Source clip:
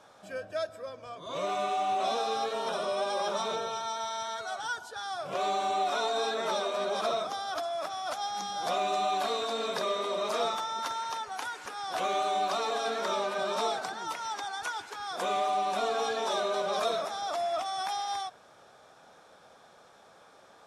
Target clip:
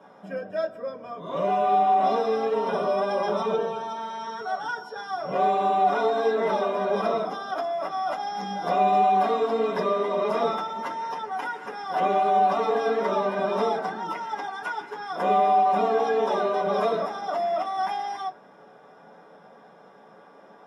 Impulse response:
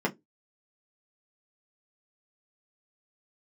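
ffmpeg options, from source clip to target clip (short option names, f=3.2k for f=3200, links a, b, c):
-filter_complex "[0:a]equalizer=f=8.1k:t=o:w=0.37:g=-6,bandreject=f=50:t=h:w=6,bandreject=f=100:t=h:w=6,bandreject=f=150:t=h:w=6,bandreject=f=200:t=h:w=6,bandreject=f=250:t=h:w=6,bandreject=f=300:t=h:w=6,bandreject=f=350:t=h:w=6,bandreject=f=400:t=h:w=6,bandreject=f=450:t=h:w=6[a];[1:a]atrim=start_sample=2205[b];[a][b]afir=irnorm=-1:irlink=0,asettb=1/sr,asplit=3[c][d][e];[c]atrim=end=4.194[f];[d]atrim=start=4.19:end=5.33,asetpts=PTS-STARTPTS,afade=t=in:d=0.004:c=qsin,afade=t=out:st=1.136:d=0.004:c=qsin,aeval=exprs='val(0)+0.00501*sin(2*PI*5500*n/s)':c=same[g];[e]atrim=start=5.326[h];[f][g]acrossfade=d=0.004:c1=hsin:c2=qsin[i];[i][h]acrossfade=d=0.004:c1=qsin:c2=hsin,volume=-5dB"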